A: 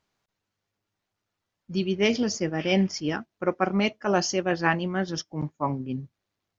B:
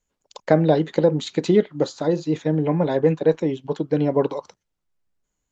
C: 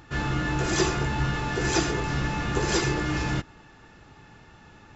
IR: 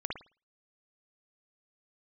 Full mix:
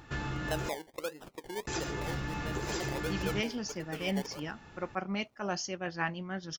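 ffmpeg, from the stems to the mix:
-filter_complex "[0:a]equalizer=frequency=380:width_type=o:width=1.5:gain=-5.5,adelay=1350,volume=-8.5dB[link_01];[1:a]highpass=480,acompressor=mode=upward:threshold=-36dB:ratio=2.5,acrusher=samples=27:mix=1:aa=0.000001:lfo=1:lforange=16.2:lforate=1.5,volume=-17dB[link_02];[2:a]acompressor=threshold=-31dB:ratio=4,volume=-2.5dB,asplit=3[link_03][link_04][link_05];[link_03]atrim=end=0.69,asetpts=PTS-STARTPTS,afade=type=out:start_time=0.686:duration=0.004:curve=hsin[link_06];[link_04]atrim=start=0.69:end=1.67,asetpts=PTS-STARTPTS,volume=0[link_07];[link_05]atrim=start=1.67,asetpts=PTS-STARTPTS,afade=type=in:duration=0.004:curve=hsin[link_08];[link_06][link_07][link_08]concat=n=3:v=0:a=1[link_09];[link_01][link_02][link_09]amix=inputs=3:normalize=0"

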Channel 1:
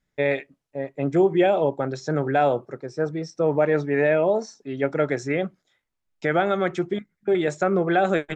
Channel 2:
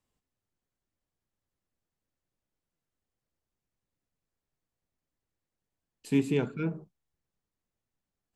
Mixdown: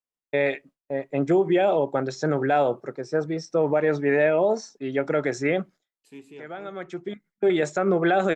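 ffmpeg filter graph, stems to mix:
ffmpeg -i stem1.wav -i stem2.wav -filter_complex "[0:a]agate=range=-33dB:threshold=-44dB:ratio=3:detection=peak,equalizer=frequency=69:width=0.96:gain=-11.5,adelay=150,volume=2dB[link_01];[1:a]bass=frequency=250:gain=-13,treble=frequency=4000:gain=-1,volume=-13.5dB,asplit=2[link_02][link_03];[link_03]apad=whole_len=374959[link_04];[link_01][link_04]sidechaincompress=threshold=-59dB:ratio=8:attack=7.6:release=776[link_05];[link_05][link_02]amix=inputs=2:normalize=0,alimiter=limit=-12.5dB:level=0:latency=1:release=64" out.wav

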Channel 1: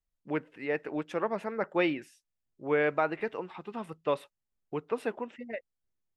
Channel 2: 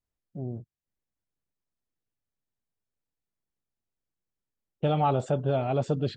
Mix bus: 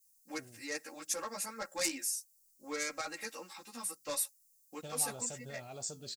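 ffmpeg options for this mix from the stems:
ffmpeg -i stem1.wav -i stem2.wav -filter_complex "[0:a]aecho=1:1:3.7:0.85,asoftclip=type=tanh:threshold=-14dB,asplit=2[link_01][link_02];[link_02]adelay=11.9,afreqshift=2[link_03];[link_01][link_03]amix=inputs=2:normalize=1,volume=-5dB[link_04];[1:a]flanger=delay=7.9:depth=5.9:regen=76:speed=0.55:shape=sinusoidal,volume=-12dB[link_05];[link_04][link_05]amix=inputs=2:normalize=0,tiltshelf=frequency=1100:gain=-6.5,asoftclip=type=tanh:threshold=-31.5dB,aexciter=amount=15.1:drive=6.1:freq=4800" out.wav

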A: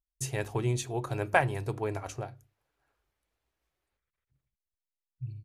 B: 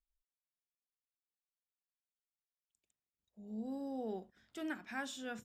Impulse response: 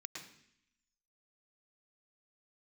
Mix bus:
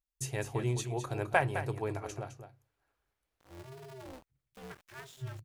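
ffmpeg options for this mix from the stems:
-filter_complex "[0:a]volume=-3dB,asplit=2[link_01][link_02];[link_02]volume=-10dB[link_03];[1:a]aeval=exprs='val(0)*gte(abs(val(0)),0.00473)':channel_layout=same,aeval=exprs='val(0)*sgn(sin(2*PI*130*n/s))':channel_layout=same,volume=-7dB[link_04];[link_03]aecho=0:1:210:1[link_05];[link_01][link_04][link_05]amix=inputs=3:normalize=0"

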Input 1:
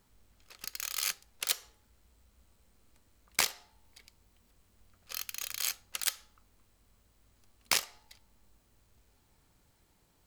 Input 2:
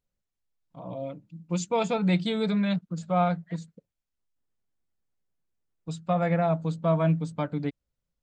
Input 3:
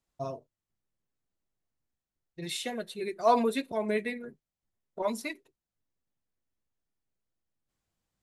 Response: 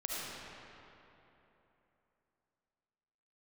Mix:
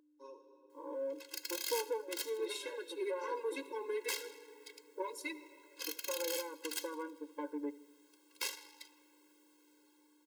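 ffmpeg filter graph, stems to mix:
-filter_complex "[0:a]adelay=700,volume=-6.5dB,asplit=3[link_01][link_02][link_03];[link_02]volume=-22dB[link_04];[link_03]volume=-17.5dB[link_05];[1:a]acompressor=threshold=-29dB:ratio=6,lowpass=1300,volume=0.5dB,asplit=2[link_06][link_07];[link_07]volume=-20.5dB[link_08];[2:a]bandreject=frequency=60:width_type=h:width=6,bandreject=frequency=120:width_type=h:width=6,bandreject=frequency=180:width_type=h:width=6,bandreject=frequency=240:width_type=h:width=6,bandreject=frequency=300:width_type=h:width=6,acrossover=split=260[link_09][link_10];[link_10]acompressor=threshold=-30dB:ratio=6[link_11];[link_09][link_11]amix=inputs=2:normalize=0,volume=-13.5dB,asplit=2[link_12][link_13];[link_13]volume=-5dB[link_14];[link_01][link_12]amix=inputs=2:normalize=0,dynaudnorm=framelen=130:gausssize=17:maxgain=11.5dB,alimiter=limit=-16dB:level=0:latency=1:release=353,volume=0dB[link_15];[3:a]atrim=start_sample=2205[link_16];[link_04][link_14]amix=inputs=2:normalize=0[link_17];[link_17][link_16]afir=irnorm=-1:irlink=0[link_18];[link_05][link_08]amix=inputs=2:normalize=0,aecho=0:1:79|158|237|316|395|474|553|632|711:1|0.59|0.348|0.205|0.121|0.0715|0.0422|0.0249|0.0147[link_19];[link_06][link_15][link_18][link_19]amix=inputs=4:normalize=0,asoftclip=type=tanh:threshold=-27dB,aeval=exprs='val(0)+0.00224*(sin(2*PI*60*n/s)+sin(2*PI*2*60*n/s)/2+sin(2*PI*3*60*n/s)/3+sin(2*PI*4*60*n/s)/4+sin(2*PI*5*60*n/s)/5)':channel_layout=same,afftfilt=real='re*eq(mod(floor(b*sr/1024/280),2),1)':imag='im*eq(mod(floor(b*sr/1024/280),2),1)':win_size=1024:overlap=0.75"

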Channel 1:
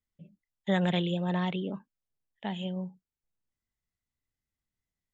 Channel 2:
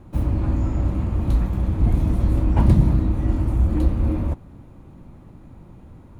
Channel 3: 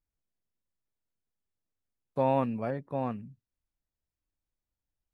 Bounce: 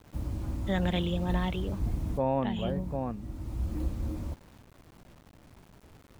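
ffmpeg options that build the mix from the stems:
ffmpeg -i stem1.wav -i stem2.wav -i stem3.wav -filter_complex "[0:a]dynaudnorm=framelen=520:gausssize=3:maxgain=4.5dB,volume=-5.5dB[link_01];[1:a]acrusher=bits=6:mix=0:aa=0.000001,volume=-13dB[link_02];[2:a]tiltshelf=frequency=1400:gain=5,volume=-5.5dB,asplit=2[link_03][link_04];[link_04]apad=whole_len=273331[link_05];[link_02][link_05]sidechaincompress=threshold=-39dB:ratio=8:attack=29:release=708[link_06];[link_01][link_06][link_03]amix=inputs=3:normalize=0" out.wav

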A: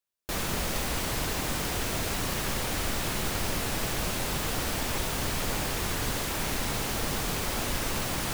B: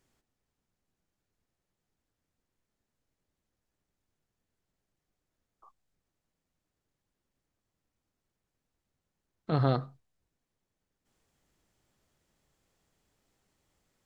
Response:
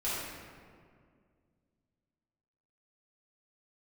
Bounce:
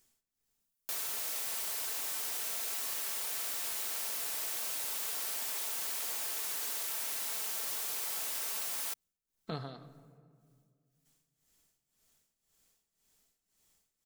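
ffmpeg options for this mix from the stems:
-filter_complex "[0:a]highpass=560,crystalizer=i=2.5:c=0,adelay=600,volume=-9dB[link_01];[1:a]tremolo=f=1.9:d=0.84,crystalizer=i=5:c=0,volume=-6dB,asplit=2[link_02][link_03];[link_03]volume=-20dB[link_04];[2:a]atrim=start_sample=2205[link_05];[link_04][link_05]afir=irnorm=-1:irlink=0[link_06];[link_01][link_02][link_06]amix=inputs=3:normalize=0,aecho=1:1:4.5:0.3,acompressor=threshold=-37dB:ratio=2"

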